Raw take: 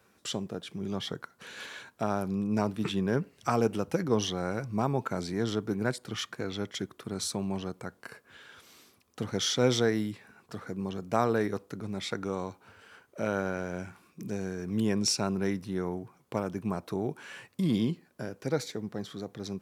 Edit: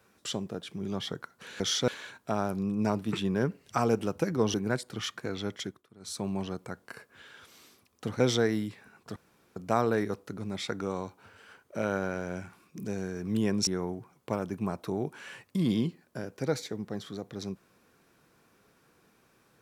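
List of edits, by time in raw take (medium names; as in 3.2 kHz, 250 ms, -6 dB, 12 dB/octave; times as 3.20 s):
4.26–5.69 s: delete
6.74–7.40 s: dip -19 dB, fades 0.26 s
9.35–9.63 s: move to 1.60 s
10.59–10.99 s: room tone
15.10–15.71 s: delete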